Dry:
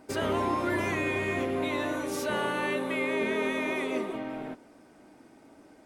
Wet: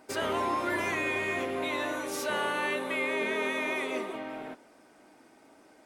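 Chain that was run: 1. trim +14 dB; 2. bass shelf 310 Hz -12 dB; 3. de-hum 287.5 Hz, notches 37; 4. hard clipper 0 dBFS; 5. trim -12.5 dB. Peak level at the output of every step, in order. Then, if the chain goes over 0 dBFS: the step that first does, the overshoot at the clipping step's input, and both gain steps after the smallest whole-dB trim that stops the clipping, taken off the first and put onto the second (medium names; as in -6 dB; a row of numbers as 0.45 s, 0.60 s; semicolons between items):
-2.5 dBFS, -5.5 dBFS, -5.5 dBFS, -5.5 dBFS, -18.0 dBFS; nothing clips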